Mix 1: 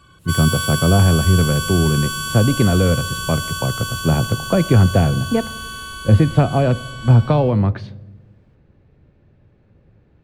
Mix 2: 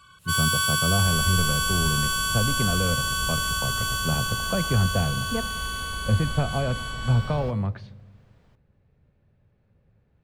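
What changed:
speech −9.5 dB
second sound +5.5 dB
master: add parametric band 320 Hz −8 dB 0.53 octaves

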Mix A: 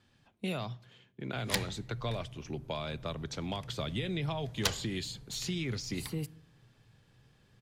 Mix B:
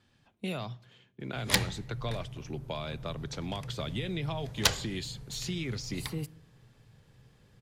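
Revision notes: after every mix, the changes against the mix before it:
background +6.0 dB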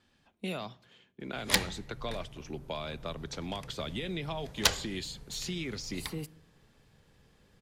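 master: add parametric band 120 Hz −12 dB 0.5 octaves

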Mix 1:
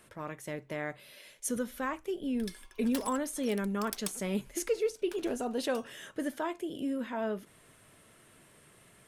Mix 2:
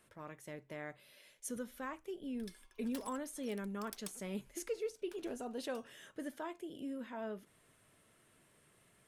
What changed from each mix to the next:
speech −9.0 dB
background −10.0 dB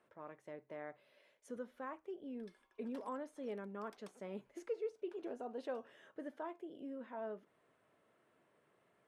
master: add resonant band-pass 650 Hz, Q 0.72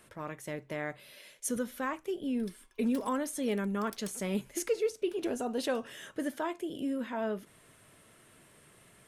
speech +9.0 dB
master: remove resonant band-pass 650 Hz, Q 0.72

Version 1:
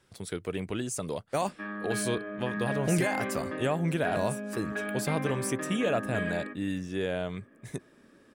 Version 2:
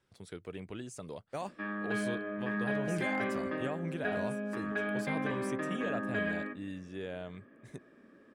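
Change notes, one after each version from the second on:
speech −9.5 dB
master: add high-shelf EQ 9,000 Hz −11.5 dB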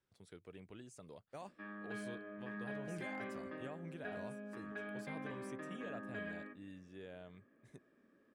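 speech −11.0 dB
background −11.5 dB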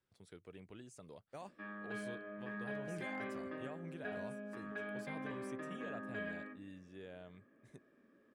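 background: send +6.5 dB

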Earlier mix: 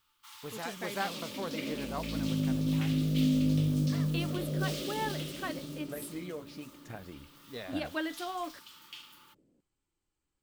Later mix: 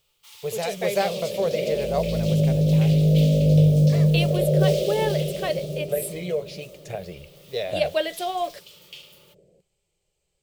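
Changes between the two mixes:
speech +7.5 dB
second sound +10.0 dB
master: add drawn EQ curve 110 Hz 0 dB, 180 Hz +5 dB, 270 Hz −21 dB, 400 Hz +7 dB, 610 Hz +11 dB, 930 Hz −5 dB, 1,500 Hz −7 dB, 2,400 Hz +5 dB

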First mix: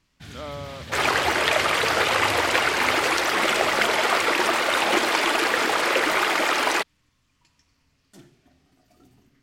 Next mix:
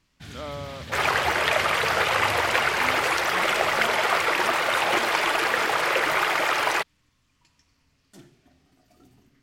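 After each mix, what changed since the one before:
second sound: add octave-band graphic EQ 125/250/4,000/8,000 Hz +9/−12/−3/−4 dB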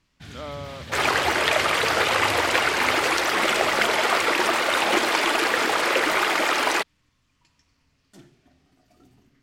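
first sound: add high-shelf EQ 9,300 Hz −5.5 dB
second sound: add octave-band graphic EQ 125/250/4,000/8,000 Hz −9/+12/+3/+4 dB

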